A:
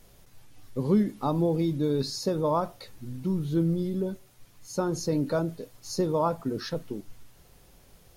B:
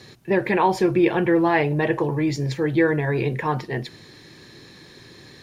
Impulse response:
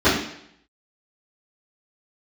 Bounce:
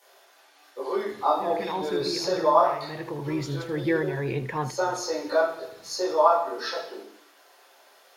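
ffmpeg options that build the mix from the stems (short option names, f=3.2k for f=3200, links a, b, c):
-filter_complex "[0:a]highpass=f=620:w=0.5412,highpass=f=620:w=1.3066,volume=-3.5dB,asplit=3[a][b][c];[b]volume=-10dB[d];[1:a]adelay=1100,volume=-5.5dB,asplit=2[e][f];[f]volume=-16.5dB[g];[c]apad=whole_len=287967[h];[e][h]sidechaincompress=threshold=-46dB:ratio=8:attack=16:release=578[i];[2:a]atrim=start_sample=2205[j];[d][j]afir=irnorm=-1:irlink=0[k];[g]aecho=0:1:78:1[l];[a][i][k][l]amix=inputs=4:normalize=0"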